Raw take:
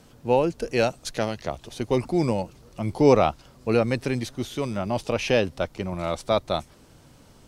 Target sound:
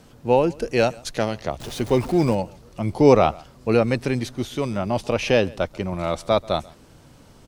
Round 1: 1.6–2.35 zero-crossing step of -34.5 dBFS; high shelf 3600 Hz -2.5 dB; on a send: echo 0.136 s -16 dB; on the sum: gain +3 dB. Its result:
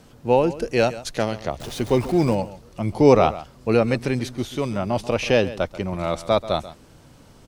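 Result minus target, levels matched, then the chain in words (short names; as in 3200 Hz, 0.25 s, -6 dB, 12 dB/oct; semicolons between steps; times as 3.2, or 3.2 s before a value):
echo-to-direct +8 dB
1.6–2.35 zero-crossing step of -34.5 dBFS; high shelf 3600 Hz -2.5 dB; on a send: echo 0.136 s -24 dB; on the sum: gain +3 dB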